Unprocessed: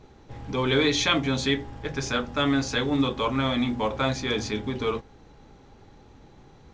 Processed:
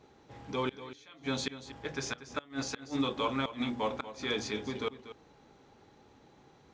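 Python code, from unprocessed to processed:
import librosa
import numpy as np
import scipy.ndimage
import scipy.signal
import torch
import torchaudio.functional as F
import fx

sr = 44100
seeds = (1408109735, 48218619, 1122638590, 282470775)

y = fx.highpass(x, sr, hz=230.0, slope=6)
y = fx.gate_flip(y, sr, shuts_db=-15.0, range_db=-27)
y = y + 10.0 ** (-13.5 / 20.0) * np.pad(y, (int(238 * sr / 1000.0), 0))[:len(y)]
y = y * 10.0 ** (-5.0 / 20.0)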